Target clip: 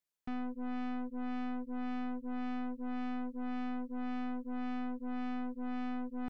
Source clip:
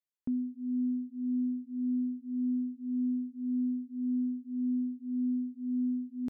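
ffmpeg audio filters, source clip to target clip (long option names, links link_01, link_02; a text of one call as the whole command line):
ffmpeg -i in.wav -af "aeval=exprs='(tanh(178*val(0)+0.8)-tanh(0.8))/178':channel_layout=same,volume=7.5dB" out.wav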